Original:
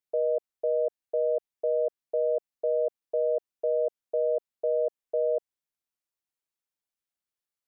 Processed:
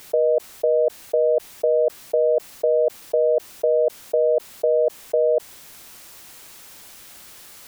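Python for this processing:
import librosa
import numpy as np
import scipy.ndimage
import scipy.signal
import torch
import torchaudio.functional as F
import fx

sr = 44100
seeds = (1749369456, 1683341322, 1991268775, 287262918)

y = fx.env_flatten(x, sr, amount_pct=100)
y = y * 10.0 ** (7.5 / 20.0)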